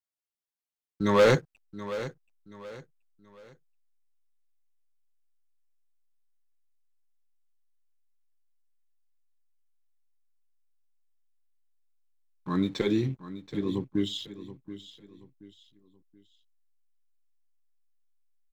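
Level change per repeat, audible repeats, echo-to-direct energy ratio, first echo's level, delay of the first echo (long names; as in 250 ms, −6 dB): −9.5 dB, 3, −13.5 dB, −14.0 dB, 728 ms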